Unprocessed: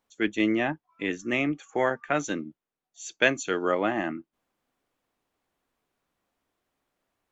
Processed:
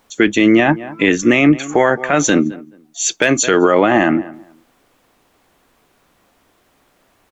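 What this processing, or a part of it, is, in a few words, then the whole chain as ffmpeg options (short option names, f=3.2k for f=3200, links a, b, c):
loud club master: -filter_complex "[0:a]asplit=2[a][b];[b]adelay=214,lowpass=f=1.5k:p=1,volume=-23dB,asplit=2[c][d];[d]adelay=214,lowpass=f=1.5k:p=1,volume=0.2[e];[a][c][e]amix=inputs=3:normalize=0,acompressor=threshold=-30dB:ratio=1.5,asoftclip=type=hard:threshold=-12.5dB,alimiter=level_in=23dB:limit=-1dB:release=50:level=0:latency=1,volume=-1dB"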